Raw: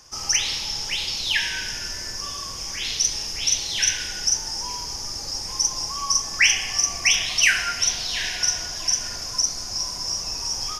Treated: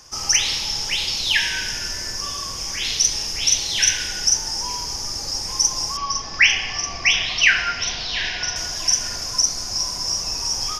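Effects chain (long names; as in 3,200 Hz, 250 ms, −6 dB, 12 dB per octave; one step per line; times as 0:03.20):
0:05.97–0:08.56: low-pass filter 4,700 Hz 24 dB per octave
level +3.5 dB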